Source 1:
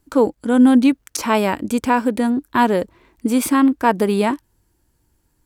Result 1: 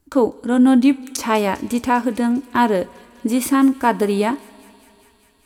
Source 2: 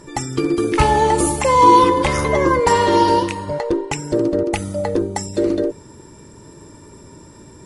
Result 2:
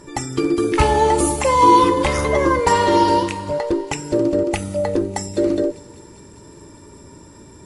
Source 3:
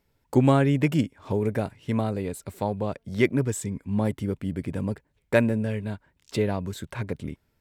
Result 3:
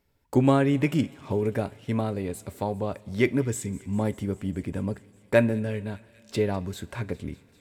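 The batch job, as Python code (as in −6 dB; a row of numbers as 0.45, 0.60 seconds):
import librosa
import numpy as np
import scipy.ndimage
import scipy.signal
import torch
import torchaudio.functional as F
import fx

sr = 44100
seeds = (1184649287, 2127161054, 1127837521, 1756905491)

y = fx.echo_wet_highpass(x, sr, ms=200, feedback_pct=78, hz=2900.0, wet_db=-19.0)
y = fx.rev_double_slope(y, sr, seeds[0], early_s=0.25, late_s=2.8, knee_db=-19, drr_db=12.5)
y = y * librosa.db_to_amplitude(-1.0)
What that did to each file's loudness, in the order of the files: −0.5, −1.0, −0.5 LU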